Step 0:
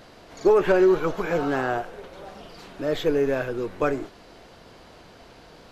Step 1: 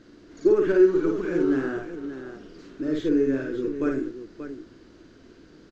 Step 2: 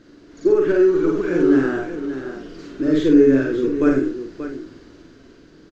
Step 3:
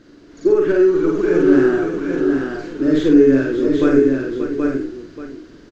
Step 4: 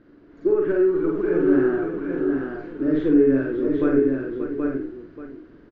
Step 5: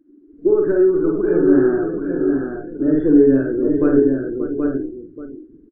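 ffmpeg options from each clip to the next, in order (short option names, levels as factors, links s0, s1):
-af "firequalizer=gain_entry='entry(180,0);entry(310,11);entry(500,-5);entry(750,-14);entry(1500,-1);entry(2300,-7);entry(3500,-6);entry(6700,-2);entry(10000,-20)':delay=0.05:min_phase=1,aecho=1:1:52|582:0.668|0.316,volume=0.562"
-filter_complex "[0:a]dynaudnorm=f=210:g=11:m=1.88,asplit=2[s0][s1];[s1]adelay=45,volume=0.501[s2];[s0][s2]amix=inputs=2:normalize=0,volume=1.26"
-af "aecho=1:1:779:0.596,volume=1.19"
-af "lowpass=1900,volume=0.531"
-af "afftdn=nr=25:nf=-40,tiltshelf=f=1400:g=3.5,volume=1.19"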